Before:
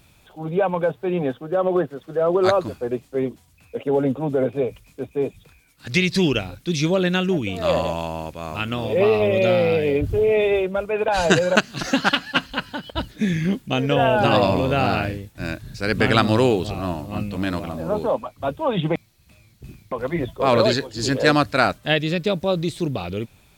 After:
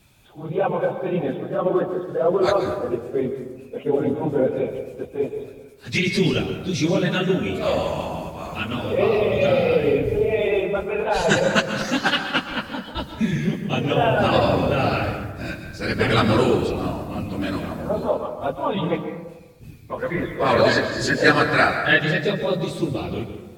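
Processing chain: phase scrambler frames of 50 ms; 19.97–22.25 bell 1700 Hz +11.5 dB 0.38 oct; reverb RT60 1.1 s, pre-delay 0.113 s, DRR 7 dB; gain -1.5 dB

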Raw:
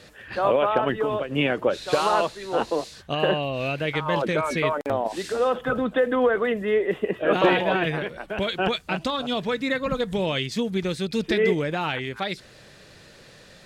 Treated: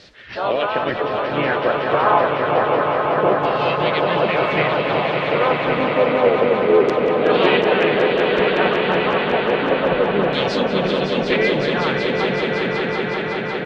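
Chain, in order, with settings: LFO low-pass saw down 0.29 Hz 410–4700 Hz; swelling echo 0.186 s, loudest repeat 5, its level -7 dB; harmoniser -4 st -10 dB, +3 st -6 dB; gain -1.5 dB

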